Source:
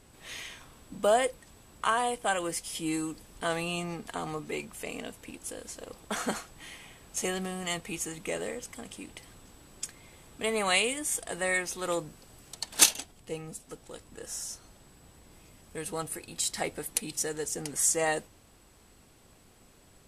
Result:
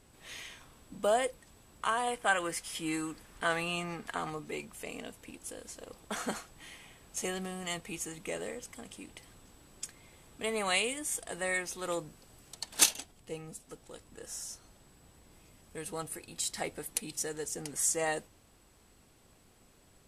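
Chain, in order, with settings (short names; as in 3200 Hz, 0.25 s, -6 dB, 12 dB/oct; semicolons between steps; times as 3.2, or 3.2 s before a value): 2.07–4.3 bell 1600 Hz +8 dB 1.5 oct; gain -4 dB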